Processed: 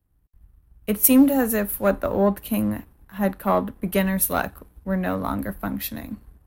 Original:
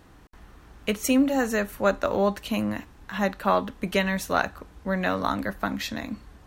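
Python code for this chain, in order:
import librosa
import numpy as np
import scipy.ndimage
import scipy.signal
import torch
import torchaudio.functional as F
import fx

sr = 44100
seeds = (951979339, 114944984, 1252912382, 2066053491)

y = fx.curve_eq(x, sr, hz=(180.0, 6800.0, 11000.0), db=(0, -12, 10))
y = fx.leveller(y, sr, passes=1)
y = fx.band_widen(y, sr, depth_pct=70)
y = F.gain(torch.from_numpy(y), 1.5).numpy()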